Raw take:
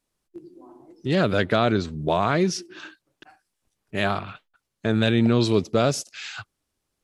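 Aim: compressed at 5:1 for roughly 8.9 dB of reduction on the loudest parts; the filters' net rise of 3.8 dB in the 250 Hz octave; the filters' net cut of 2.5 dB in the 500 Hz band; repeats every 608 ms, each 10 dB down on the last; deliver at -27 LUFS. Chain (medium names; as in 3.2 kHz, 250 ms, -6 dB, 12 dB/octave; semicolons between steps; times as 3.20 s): peaking EQ 250 Hz +6 dB; peaking EQ 500 Hz -5.5 dB; compression 5:1, threshold -22 dBFS; feedback delay 608 ms, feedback 32%, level -10 dB; trim +1.5 dB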